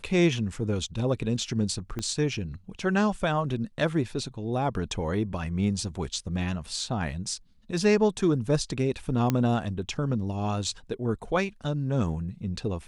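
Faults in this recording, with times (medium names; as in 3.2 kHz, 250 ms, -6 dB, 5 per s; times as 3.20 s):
1.99 s: pop -19 dBFS
9.30 s: pop -11 dBFS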